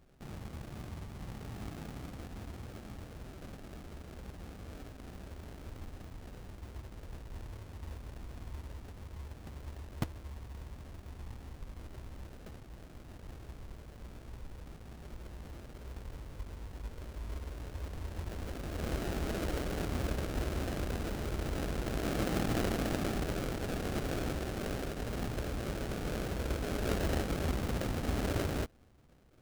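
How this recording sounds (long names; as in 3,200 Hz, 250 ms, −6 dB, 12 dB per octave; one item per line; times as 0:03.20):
aliases and images of a low sample rate 1,000 Hz, jitter 20%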